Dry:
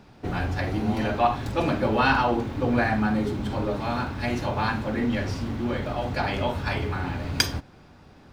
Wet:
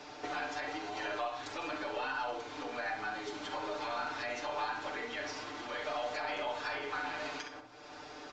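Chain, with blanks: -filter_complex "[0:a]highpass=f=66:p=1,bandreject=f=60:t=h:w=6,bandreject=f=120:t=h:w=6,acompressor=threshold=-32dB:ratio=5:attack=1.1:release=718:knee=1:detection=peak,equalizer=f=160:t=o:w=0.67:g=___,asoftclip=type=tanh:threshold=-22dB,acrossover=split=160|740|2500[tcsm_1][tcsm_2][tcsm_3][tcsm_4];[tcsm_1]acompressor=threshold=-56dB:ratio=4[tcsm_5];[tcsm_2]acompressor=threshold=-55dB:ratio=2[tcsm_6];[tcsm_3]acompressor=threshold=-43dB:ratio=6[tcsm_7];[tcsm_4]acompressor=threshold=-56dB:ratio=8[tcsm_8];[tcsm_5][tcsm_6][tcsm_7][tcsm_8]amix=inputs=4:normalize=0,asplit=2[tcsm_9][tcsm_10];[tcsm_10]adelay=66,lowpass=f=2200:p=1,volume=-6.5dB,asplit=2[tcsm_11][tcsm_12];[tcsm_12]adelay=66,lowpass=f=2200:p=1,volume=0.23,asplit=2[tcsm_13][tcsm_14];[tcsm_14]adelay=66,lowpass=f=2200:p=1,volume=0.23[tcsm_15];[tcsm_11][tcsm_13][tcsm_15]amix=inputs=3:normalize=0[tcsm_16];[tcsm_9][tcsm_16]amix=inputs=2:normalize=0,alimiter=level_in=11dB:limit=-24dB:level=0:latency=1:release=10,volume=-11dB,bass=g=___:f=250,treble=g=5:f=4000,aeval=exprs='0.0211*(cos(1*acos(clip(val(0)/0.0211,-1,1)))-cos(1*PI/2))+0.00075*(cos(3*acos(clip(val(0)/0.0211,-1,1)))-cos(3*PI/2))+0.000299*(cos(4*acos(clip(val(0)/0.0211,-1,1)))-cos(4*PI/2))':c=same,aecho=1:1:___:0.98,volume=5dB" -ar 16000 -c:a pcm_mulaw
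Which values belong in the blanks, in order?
-14, -12, 6.7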